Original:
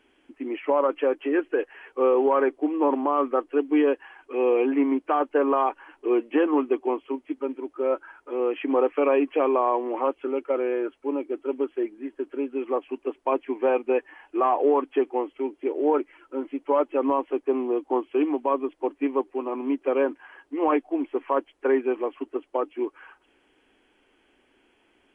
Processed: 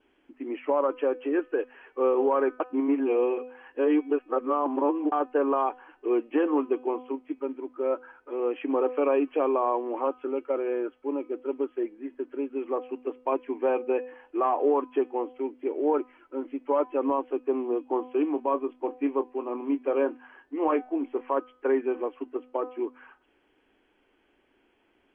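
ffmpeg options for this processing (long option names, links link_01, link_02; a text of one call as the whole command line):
ffmpeg -i in.wav -filter_complex "[0:a]asettb=1/sr,asplit=3[link_01][link_02][link_03];[link_01]atrim=end=18.334[link_04];[link_02]atrim=start=18.33:end=21.21,asetpts=PTS-STARTPTS,afade=type=in:duration=0.004:curve=qsin,afade=type=out:start_time=2.876:duration=0.004:curve=qsin,asplit=2[link_05][link_06];[link_06]adelay=25,volume=-11.5dB[link_07];[link_05][link_07]amix=inputs=2:normalize=0,atrim=end_sample=127008[link_08];[link_03]atrim=start=21.206[link_09];[link_04][link_08]acrossfade=duration=0.004:curve1=hsin:curve2=qsin[link_10];[link_10][link_09]acrossfade=duration=0.004:curve1=qsin:curve2=hsin,asplit=3[link_11][link_12][link_13];[link_11]atrim=end=2.602[link_14];[link_12]atrim=start=2.598:end=5.122,asetpts=PTS-STARTPTS,areverse[link_15];[link_13]atrim=start=5.118[link_16];[link_14][link_15]acrossfade=duration=0.004:curve1=hsin:curve2=hsin[link_17];[link_17][link_16]acrossfade=duration=0.004:curve1=hsin:curve2=hsin,lowpass=frequency=2600:poles=1,bandreject=frequency=251.6:width_type=h:width=4,bandreject=frequency=503.2:width_type=h:width=4,bandreject=frequency=754.8:width_type=h:width=4,bandreject=frequency=1006.4:width_type=h:width=4,bandreject=frequency=1258:width_type=h:width=4,bandreject=frequency=1509.6:width_type=h:width=4,bandreject=frequency=1761.2:width_type=h:width=4,bandreject=frequency=2012.8:width_type=h:width=4,bandreject=frequency=2264.4:width_type=h:width=4,bandreject=frequency=2516:width_type=h:width=4,bandreject=frequency=2767.6:width_type=h:width=4,bandreject=frequency=3019.2:width_type=h:width=4,bandreject=frequency=3270.8:width_type=h:width=4,bandreject=frequency=3522.4:width_type=h:width=4,bandreject=frequency=3774:width_type=h:width=4,bandreject=frequency=4025.6:width_type=h:width=4,bandreject=frequency=4277.2:width_type=h:width=4,bandreject=frequency=4528.8:width_type=h:width=4,bandreject=frequency=4780.4:width_type=h:width=4,bandreject=frequency=5032:width_type=h:width=4,bandreject=frequency=5283.6:width_type=h:width=4,bandreject=frequency=5535.2:width_type=h:width=4,bandreject=frequency=5786.8:width_type=h:width=4,bandreject=frequency=6038.4:width_type=h:width=4,bandreject=frequency=6290:width_type=h:width=4,bandreject=frequency=6541.6:width_type=h:width=4,bandreject=frequency=6793.2:width_type=h:width=4,bandreject=frequency=7044.8:width_type=h:width=4,bandreject=frequency=7296.4:width_type=h:width=4,adynamicequalizer=threshold=0.00158:dfrequency=2000:dqfactor=5.5:tfrequency=2000:tqfactor=5.5:attack=5:release=100:ratio=0.375:range=3:mode=cutabove:tftype=bell,volume=-2.5dB" out.wav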